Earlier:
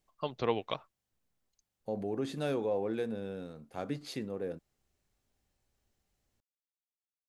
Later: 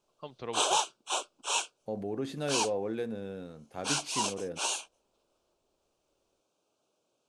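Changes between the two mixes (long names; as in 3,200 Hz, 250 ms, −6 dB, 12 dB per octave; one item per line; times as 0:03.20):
first voice −8.0 dB
background: unmuted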